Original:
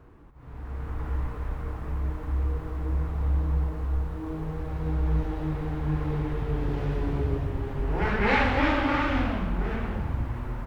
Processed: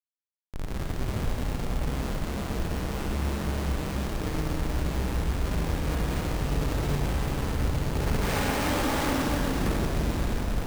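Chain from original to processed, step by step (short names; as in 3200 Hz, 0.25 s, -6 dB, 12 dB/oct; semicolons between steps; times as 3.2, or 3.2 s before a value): de-hum 45.82 Hz, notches 33; in parallel at +2 dB: compressor 10:1, threshold -35 dBFS, peak gain reduction 16.5 dB; on the sum: Schmitt trigger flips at -26 dBFS; Schroeder reverb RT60 3.9 s, DRR -2 dB; careless resampling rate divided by 4×, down none, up hold; gain -4.5 dB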